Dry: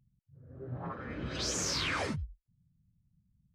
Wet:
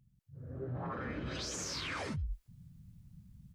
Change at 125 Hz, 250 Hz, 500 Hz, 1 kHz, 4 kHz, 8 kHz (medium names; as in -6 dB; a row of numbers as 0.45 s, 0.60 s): -0.5 dB, -2.0 dB, -2.5 dB, -3.5 dB, -6.0 dB, -6.5 dB